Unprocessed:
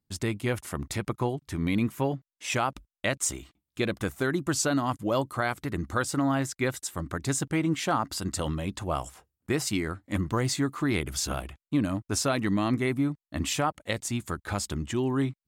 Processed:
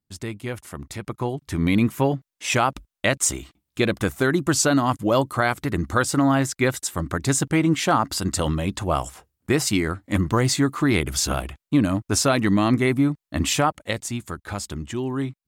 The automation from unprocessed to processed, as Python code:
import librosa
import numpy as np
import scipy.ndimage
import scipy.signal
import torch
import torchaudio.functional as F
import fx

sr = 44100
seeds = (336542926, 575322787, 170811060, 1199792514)

y = fx.gain(x, sr, db=fx.line((0.98, -2.0), (1.59, 7.0), (13.61, 7.0), (14.26, 0.5)))